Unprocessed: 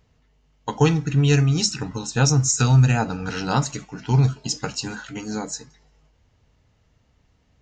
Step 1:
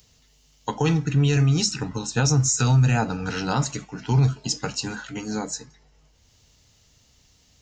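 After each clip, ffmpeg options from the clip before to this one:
ffmpeg -i in.wav -filter_complex "[0:a]acrossover=split=110|3800[link_01][link_02][link_03];[link_03]acompressor=mode=upward:threshold=-46dB:ratio=2.5[link_04];[link_01][link_02][link_04]amix=inputs=3:normalize=0,alimiter=limit=-11.5dB:level=0:latency=1:release=17" out.wav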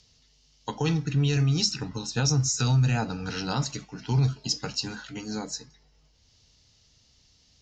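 ffmpeg -i in.wav -af "lowpass=frequency=5000:width_type=q:width=2,equalizer=frequency=1300:width=0.34:gain=-2.5,volume=-4dB" out.wav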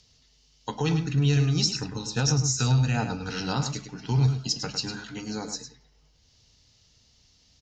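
ffmpeg -i in.wav -filter_complex "[0:a]asplit=2[link_01][link_02];[link_02]adelay=105,volume=-8dB,highshelf=frequency=4000:gain=-2.36[link_03];[link_01][link_03]amix=inputs=2:normalize=0" out.wav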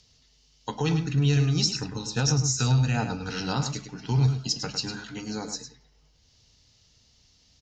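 ffmpeg -i in.wav -af anull out.wav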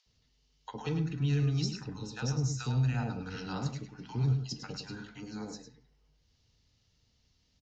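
ffmpeg -i in.wav -filter_complex "[0:a]highshelf=frequency=3900:gain=-11.5,acrossover=split=710[link_01][link_02];[link_01]adelay=60[link_03];[link_03][link_02]amix=inputs=2:normalize=0,volume=-6.5dB" out.wav

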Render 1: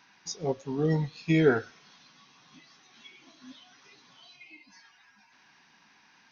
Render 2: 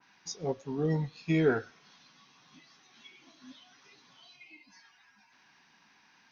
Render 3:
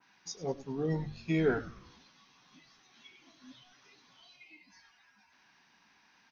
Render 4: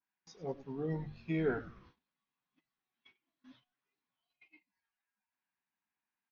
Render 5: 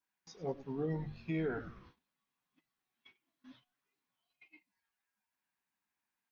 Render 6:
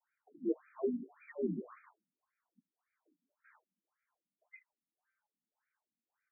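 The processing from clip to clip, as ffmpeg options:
ffmpeg -i in.wav -filter_complex "[0:a]asplit=2[link_01][link_02];[link_02]asoftclip=type=tanh:threshold=-21.5dB,volume=-8dB[link_03];[link_01][link_03]amix=inputs=2:normalize=0,adynamicequalizer=threshold=0.00501:dfrequency=2200:dqfactor=0.7:tfrequency=2200:tqfactor=0.7:attack=5:release=100:ratio=0.375:range=2:mode=cutabove:tftype=highshelf,volume=-5.5dB" out.wav
ffmpeg -i in.wav -filter_complex "[0:a]bandreject=frequency=50:width_type=h:width=6,bandreject=frequency=100:width_type=h:width=6,bandreject=frequency=150:width_type=h:width=6,asplit=6[link_01][link_02][link_03][link_04][link_05][link_06];[link_02]adelay=101,afreqshift=-130,volume=-16.5dB[link_07];[link_03]adelay=202,afreqshift=-260,volume=-22.3dB[link_08];[link_04]adelay=303,afreqshift=-390,volume=-28.2dB[link_09];[link_05]adelay=404,afreqshift=-520,volume=-34dB[link_10];[link_06]adelay=505,afreqshift=-650,volume=-39.9dB[link_11];[link_01][link_07][link_08][link_09][link_10][link_11]amix=inputs=6:normalize=0,volume=-2.5dB" out.wav
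ffmpeg -i in.wav -af "agate=range=-23dB:threshold=-55dB:ratio=16:detection=peak,lowpass=3000,volume=-4.5dB" out.wav
ffmpeg -i in.wav -af "alimiter=level_in=6dB:limit=-24dB:level=0:latency=1:release=175,volume=-6dB,volume=2dB" out.wav
ffmpeg -i in.wav -af "highpass=frequency=170:width_type=q:width=0.5412,highpass=frequency=170:width_type=q:width=1.307,lowpass=frequency=3400:width_type=q:width=0.5176,lowpass=frequency=3400:width_type=q:width=0.7071,lowpass=frequency=3400:width_type=q:width=1.932,afreqshift=-69,afftfilt=real='re*between(b*sr/1024,210*pow(1800/210,0.5+0.5*sin(2*PI*1.8*pts/sr))/1.41,210*pow(1800/210,0.5+0.5*sin(2*PI*1.8*pts/sr))*1.41)':imag='im*between(b*sr/1024,210*pow(1800/210,0.5+0.5*sin(2*PI*1.8*pts/sr))/1.41,210*pow(1800/210,0.5+0.5*sin(2*PI*1.8*pts/sr))*1.41)':win_size=1024:overlap=0.75,volume=7dB" out.wav

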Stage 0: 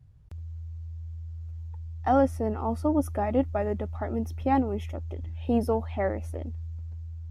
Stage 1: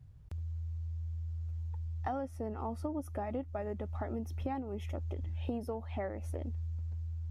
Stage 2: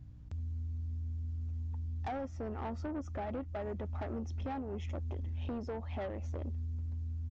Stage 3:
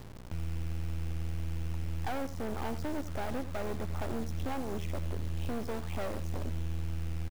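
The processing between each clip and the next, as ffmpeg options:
ffmpeg -i in.wav -af "acompressor=threshold=-34dB:ratio=8" out.wav
ffmpeg -i in.wav -af "aresample=16000,asoftclip=type=tanh:threshold=-36dB,aresample=44100,aeval=exprs='val(0)+0.00126*(sin(2*PI*60*n/s)+sin(2*PI*2*60*n/s)/2+sin(2*PI*3*60*n/s)/3+sin(2*PI*4*60*n/s)/4+sin(2*PI*5*60*n/s)/5)':channel_layout=same,volume=2.5dB" out.wav
ffmpeg -i in.wav -af "acrusher=bits=6:dc=4:mix=0:aa=0.000001,aecho=1:1:88:0.2,volume=7dB" out.wav

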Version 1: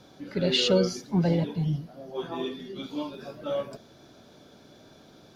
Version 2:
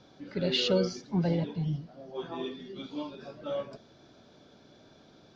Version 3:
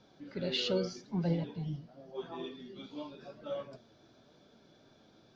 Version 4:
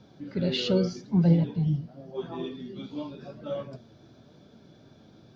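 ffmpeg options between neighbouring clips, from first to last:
ffmpeg -i in.wav -af "lowpass=frequency=6100:width=0.5412,lowpass=frequency=6100:width=1.3066,volume=-4dB" out.wav
ffmpeg -i in.wav -af "flanger=delay=4.2:depth=5.8:regen=67:speed=0.88:shape=triangular,volume=-1dB" out.wav
ffmpeg -i in.wav -af "equalizer=frequency=110:width=0.43:gain=10.5,volume=3dB" out.wav

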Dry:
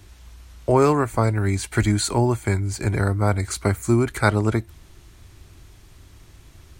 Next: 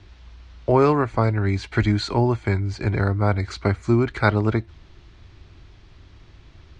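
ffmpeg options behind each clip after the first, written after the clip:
ffmpeg -i in.wav -af "lowpass=frequency=4800:width=0.5412,lowpass=frequency=4800:width=1.3066" out.wav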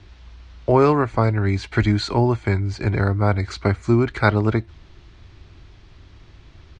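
ffmpeg -i in.wav -af "aresample=22050,aresample=44100,volume=1.5dB" out.wav

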